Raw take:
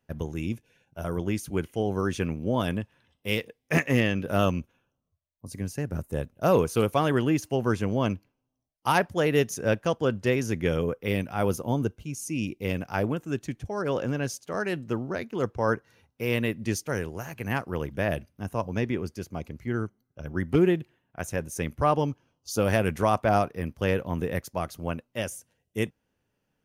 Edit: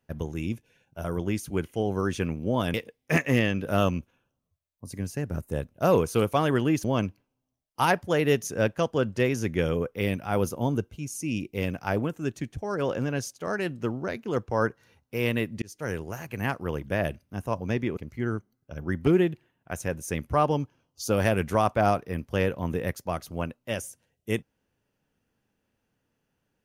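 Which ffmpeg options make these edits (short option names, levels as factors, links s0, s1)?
-filter_complex "[0:a]asplit=5[s0][s1][s2][s3][s4];[s0]atrim=end=2.742[s5];[s1]atrim=start=3.348:end=7.452[s6];[s2]atrim=start=7.908:end=16.69,asetpts=PTS-STARTPTS,afade=t=out:st=8.778:d=0.004:c=hsin[s7];[s3]atrim=start=16.69:end=19.042,asetpts=PTS-STARTPTS,afade=t=in:d=0.33[s8];[s4]atrim=start=19.448[s9];[s5][s6]acrossfade=d=0.004:c1=hsin:c2=hsin[s10];[s7][s8]concat=n=2:v=0:a=1[s11];[s10][s11]acrossfade=d=0.004:c1=hsin:c2=hsin[s12];[s12][s9]acrossfade=d=0.004:c1=hsin:c2=hsin"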